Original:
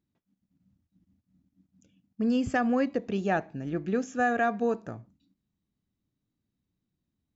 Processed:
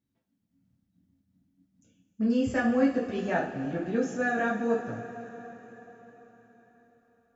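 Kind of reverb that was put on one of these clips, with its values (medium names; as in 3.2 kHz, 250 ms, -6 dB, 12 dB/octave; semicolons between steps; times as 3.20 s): two-slope reverb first 0.42 s, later 4.8 s, from -18 dB, DRR -5.5 dB; trim -6.5 dB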